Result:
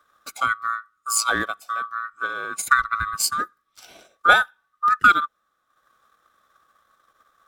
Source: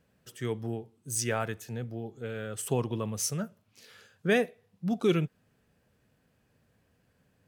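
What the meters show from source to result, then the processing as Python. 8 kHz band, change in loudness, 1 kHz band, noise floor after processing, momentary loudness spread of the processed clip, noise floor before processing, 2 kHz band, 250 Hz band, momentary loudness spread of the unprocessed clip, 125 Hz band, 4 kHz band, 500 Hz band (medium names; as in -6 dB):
+8.0 dB, +10.5 dB, +20.5 dB, -72 dBFS, 13 LU, -71 dBFS, +18.0 dB, -7.5 dB, 11 LU, -12.5 dB, +12.0 dB, -4.5 dB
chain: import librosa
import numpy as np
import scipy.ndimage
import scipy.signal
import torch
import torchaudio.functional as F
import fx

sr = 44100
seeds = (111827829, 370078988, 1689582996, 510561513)

y = fx.band_swap(x, sr, width_hz=1000)
y = fx.transient(y, sr, attack_db=7, sustain_db=-9)
y = y * 10.0 ** (6.5 / 20.0)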